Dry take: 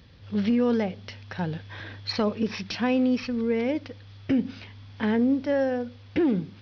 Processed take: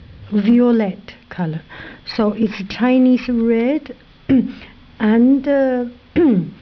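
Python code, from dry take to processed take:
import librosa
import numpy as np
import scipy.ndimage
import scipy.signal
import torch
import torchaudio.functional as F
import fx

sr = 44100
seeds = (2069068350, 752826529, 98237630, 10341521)

y = scipy.signal.sosfilt(scipy.signal.butter(2, 3600.0, 'lowpass', fs=sr, output='sos'), x)
y = fx.low_shelf(y, sr, hz=200.0, db=6.5)
y = fx.hum_notches(y, sr, base_hz=50, count=4)
y = fx.rider(y, sr, range_db=4, speed_s=2.0)
y = np.clip(y, -10.0 ** (-14.0 / 20.0), 10.0 ** (-14.0 / 20.0))
y = y * 10.0 ** (8.5 / 20.0)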